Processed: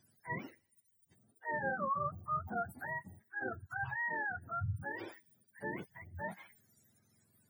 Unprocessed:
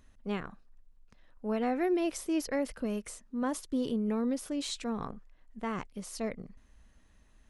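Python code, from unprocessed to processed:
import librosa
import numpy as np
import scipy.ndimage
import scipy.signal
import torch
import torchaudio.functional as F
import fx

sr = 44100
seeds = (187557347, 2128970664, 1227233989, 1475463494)

y = fx.octave_mirror(x, sr, pivot_hz=630.0)
y = fx.spec_gate(y, sr, threshold_db=-30, keep='strong')
y = fx.echo_wet_highpass(y, sr, ms=86, feedback_pct=55, hz=5300.0, wet_db=-14.5)
y = F.gain(torch.from_numpy(y), -4.5).numpy()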